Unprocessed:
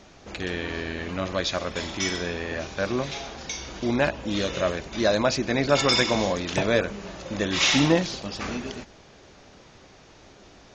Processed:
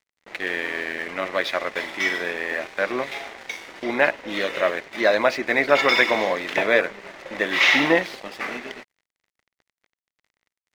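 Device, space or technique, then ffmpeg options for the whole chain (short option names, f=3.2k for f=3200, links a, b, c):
pocket radio on a weak battery: -af "highpass=380,lowpass=3.1k,aeval=exprs='sgn(val(0))*max(abs(val(0))-0.00531,0)':c=same,equalizer=f=2k:t=o:w=0.36:g=10,volume=4.5dB"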